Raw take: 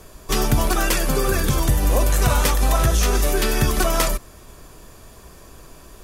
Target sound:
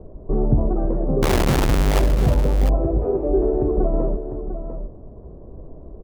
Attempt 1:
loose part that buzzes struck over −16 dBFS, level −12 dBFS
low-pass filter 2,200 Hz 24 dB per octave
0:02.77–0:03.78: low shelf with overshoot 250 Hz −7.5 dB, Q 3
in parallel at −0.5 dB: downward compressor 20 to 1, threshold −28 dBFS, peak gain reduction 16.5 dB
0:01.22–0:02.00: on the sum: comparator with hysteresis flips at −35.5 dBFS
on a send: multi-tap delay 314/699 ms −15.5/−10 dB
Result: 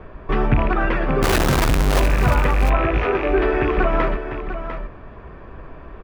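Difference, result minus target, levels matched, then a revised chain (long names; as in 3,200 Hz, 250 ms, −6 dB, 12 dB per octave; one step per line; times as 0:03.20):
2,000 Hz band +9.0 dB
loose part that buzzes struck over −16 dBFS, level −12 dBFS
low-pass filter 630 Hz 24 dB per octave
0:02.77–0:03.78: low shelf with overshoot 250 Hz −7.5 dB, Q 3
in parallel at −0.5 dB: downward compressor 20 to 1, threshold −28 dBFS, peak gain reduction 16 dB
0:01.22–0:02.00: on the sum: comparator with hysteresis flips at −35.5 dBFS
on a send: multi-tap delay 314/699 ms −15.5/−10 dB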